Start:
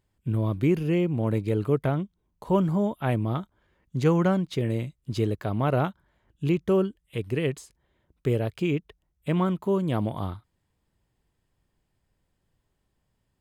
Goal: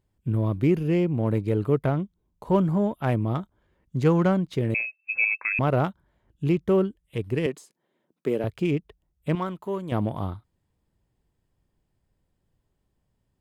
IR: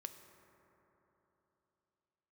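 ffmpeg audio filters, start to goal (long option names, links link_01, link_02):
-filter_complex "[0:a]asettb=1/sr,asplit=3[link_01][link_02][link_03];[link_01]atrim=end=7.464[link_04];[link_02]atrim=start=7.46:end=8.44,asetpts=PTS-STARTPTS,afade=type=in:duration=0.004:curve=qsin,afade=type=out:start_time=0.976:duration=0.004:curve=qsin,highpass=frequency=190:width=0.5412,highpass=frequency=190:width=1.3066[link_05];[link_03]atrim=start=8.436[link_06];[link_04][link_05]acrossfade=duration=0.004:curve1=hsin:curve2=qsin[link_07];[link_07][link_06]acrossfade=duration=0.004:curve1=qsin:curve2=hsin,asettb=1/sr,asplit=3[link_08][link_09][link_10];[link_08]atrim=end=9.354[link_11];[link_09]atrim=start=9.35:end=9.92,asetpts=PTS-STARTPTS,afade=type=in:duration=0.004:curve=qsin,afade=type=out:start_time=0.566:duration=0.004:curve=qsin,lowshelf=frequency=420:gain=-11.5[link_12];[link_10]atrim=start=9.916[link_13];[link_11][link_12]acrossfade=duration=0.004:curve1=hsin:curve2=qsin[link_14];[link_14][link_13]acrossfade=duration=0.004:curve1=qsin:curve2=hsin,asplit=2[link_15][link_16];[link_16]adynamicsmooth=sensitivity=4.5:basefreq=1200,volume=-2.5dB[link_17];[link_15][link_17]amix=inputs=2:normalize=0,asettb=1/sr,asplit=3[link_18][link_19][link_20];[link_18]atrim=end=4.744[link_21];[link_19]atrim=start=4.74:end=5.59,asetpts=PTS-STARTPTS,afade=type=in:duration=0.004:curve=qsin,afade=type=out:start_time=0.846:duration=0.004:curve=qsin,lowpass=frequency=2300:width_type=q:width=0.5098,lowpass=frequency=2300:width_type=q:width=0.6013,lowpass=frequency=2300:width_type=q:width=0.9,lowpass=frequency=2300:width_type=q:width=2.563,afreqshift=-2700[link_22];[link_20]atrim=start=5.586[link_23];[link_21][link_22]acrossfade=duration=0.004:curve1=hsin:curve2=qsin[link_24];[link_24][link_23]acrossfade=duration=0.004:curve1=qsin:curve2=hsin,volume=-3.5dB"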